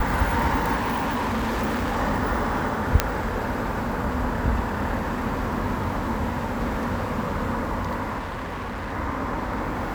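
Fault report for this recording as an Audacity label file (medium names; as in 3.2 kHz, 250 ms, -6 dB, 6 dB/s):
0.750000	1.970000	clipped -22 dBFS
3.000000	3.000000	pop -2 dBFS
8.180000	8.930000	clipped -28 dBFS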